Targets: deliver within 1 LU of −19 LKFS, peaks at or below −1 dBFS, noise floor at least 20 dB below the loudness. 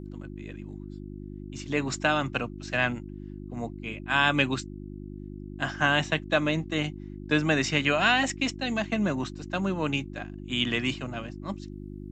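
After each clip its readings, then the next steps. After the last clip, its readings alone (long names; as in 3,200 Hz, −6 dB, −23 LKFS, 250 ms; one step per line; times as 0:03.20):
mains hum 50 Hz; hum harmonics up to 350 Hz; level of the hum −38 dBFS; integrated loudness −27.5 LKFS; sample peak −8.5 dBFS; target loudness −19.0 LKFS
→ hum removal 50 Hz, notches 7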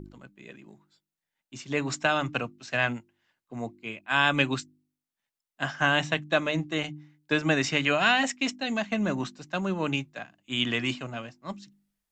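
mains hum none found; integrated loudness −27.5 LKFS; sample peak −8.5 dBFS; target loudness −19.0 LKFS
→ level +8.5 dB
brickwall limiter −1 dBFS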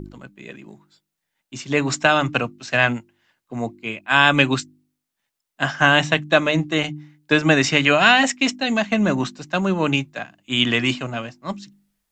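integrated loudness −19.0 LKFS; sample peak −1.0 dBFS; background noise floor −81 dBFS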